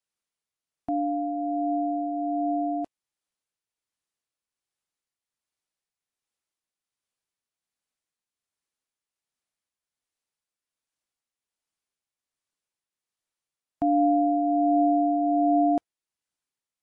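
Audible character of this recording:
tremolo triangle 1.3 Hz, depth 40%
AAC

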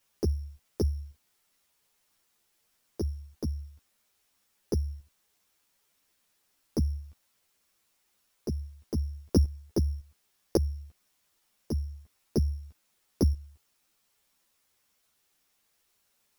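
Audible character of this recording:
a buzz of ramps at a fixed pitch in blocks of 8 samples
tremolo saw up 1.8 Hz, depth 75%
a quantiser's noise floor 12 bits, dither triangular
a shimmering, thickened sound

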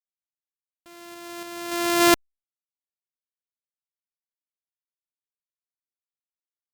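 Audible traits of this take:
a buzz of ramps at a fixed pitch in blocks of 128 samples
sample-and-hold tremolo
a quantiser's noise floor 10 bits, dither none
Opus

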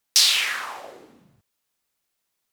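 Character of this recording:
background noise floor −78 dBFS
spectral slope +1.5 dB per octave

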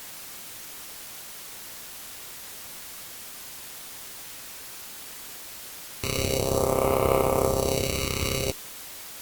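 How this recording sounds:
aliases and images of a low sample rate 1,700 Hz, jitter 0%
phaser sweep stages 2, 0.46 Hz, lowest notch 710–5,000 Hz
a quantiser's noise floor 8 bits, dither triangular
Opus

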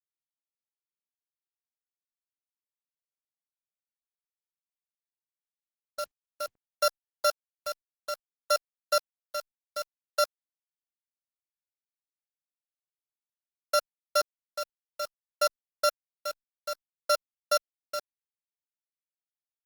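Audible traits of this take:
a buzz of ramps at a fixed pitch in blocks of 8 samples
chopped level 0.59 Hz, depth 65%, duty 50%
a quantiser's noise floor 8 bits, dither none
Opus

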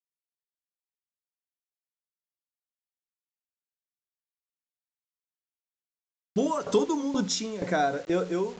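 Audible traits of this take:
tremolo saw down 2.1 Hz, depth 85%
a quantiser's noise floor 8 bits, dither none
mu-law

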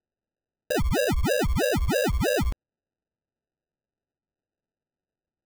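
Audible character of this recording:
aliases and images of a low sample rate 1,100 Hz, jitter 0%

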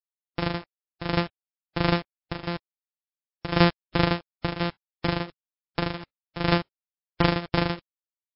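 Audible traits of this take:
a buzz of ramps at a fixed pitch in blocks of 256 samples
tremolo triangle 2.8 Hz, depth 90%
a quantiser's noise floor 8 bits, dither none
MP3

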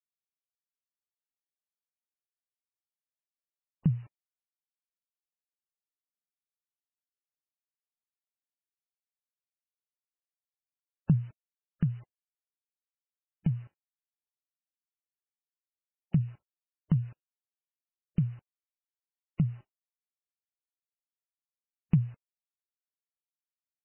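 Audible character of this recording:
a buzz of ramps at a fixed pitch in blocks of 8 samples
tremolo triangle 0.65 Hz, depth 40%
a quantiser's noise floor 10 bits, dither none
MP3

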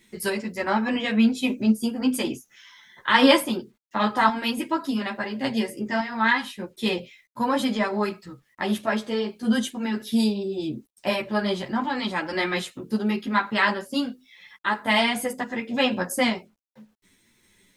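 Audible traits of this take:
sample-and-hold tremolo, depth 55%
a quantiser's noise floor 12 bits, dither none
a shimmering, thickened sound

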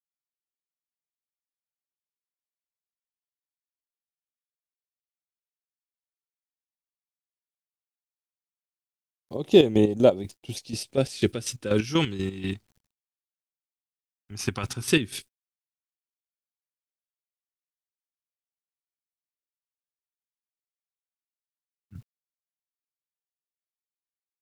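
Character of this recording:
phaser sweep stages 2, 0.13 Hz, lowest notch 450–1,400 Hz
a quantiser's noise floor 12 bits, dither none
chopped level 4.1 Hz, depth 65%, duty 40%

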